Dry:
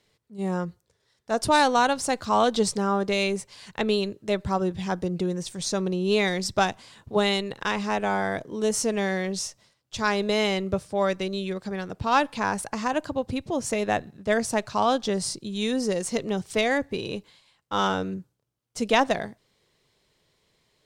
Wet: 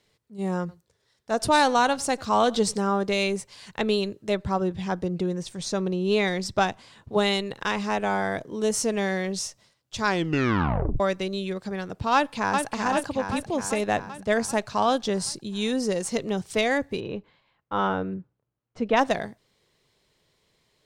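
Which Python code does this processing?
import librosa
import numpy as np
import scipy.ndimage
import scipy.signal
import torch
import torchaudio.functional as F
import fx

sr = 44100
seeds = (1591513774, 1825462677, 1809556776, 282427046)

y = fx.echo_single(x, sr, ms=96, db=-22.5, at=(0.59, 2.9))
y = fx.high_shelf(y, sr, hz=5300.0, db=-6.5, at=(4.35, 7.12))
y = fx.echo_throw(y, sr, start_s=12.14, length_s=0.58, ms=390, feedback_pct=65, wet_db=-4.5)
y = fx.lowpass(y, sr, hz=2000.0, slope=12, at=(16.99, 18.96), fade=0.02)
y = fx.edit(y, sr, fx.tape_stop(start_s=10.06, length_s=0.94), tone=tone)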